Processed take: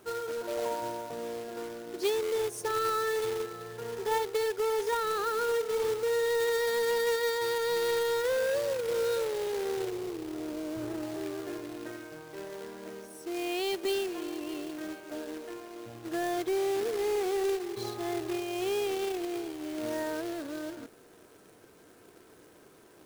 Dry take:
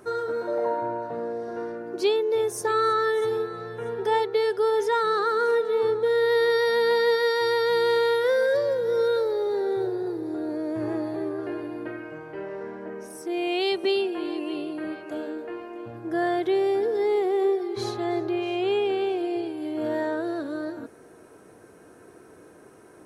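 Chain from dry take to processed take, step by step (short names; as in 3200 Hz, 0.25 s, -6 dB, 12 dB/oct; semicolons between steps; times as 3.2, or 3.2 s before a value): 9.9–11.03 median filter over 41 samples; companded quantiser 4-bit; gain -7 dB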